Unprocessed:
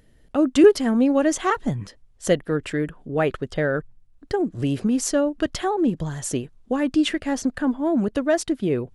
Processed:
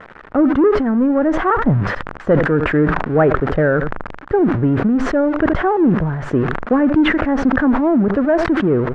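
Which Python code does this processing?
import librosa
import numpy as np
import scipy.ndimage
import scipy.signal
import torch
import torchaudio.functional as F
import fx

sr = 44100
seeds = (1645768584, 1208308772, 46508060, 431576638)

p1 = x + 0.5 * 10.0 ** (-17.0 / 20.0) * np.diff(np.sign(x), prepend=np.sign(x[:1]))
p2 = fx.leveller(p1, sr, passes=2)
p3 = fx.rider(p2, sr, range_db=10, speed_s=0.5)
p4 = scipy.signal.sosfilt(scipy.signal.cheby1(3, 1.0, 1500.0, 'lowpass', fs=sr, output='sos'), p3)
p5 = p4 + fx.echo_single(p4, sr, ms=76, db=-22.5, dry=0)
y = fx.sustainer(p5, sr, db_per_s=45.0)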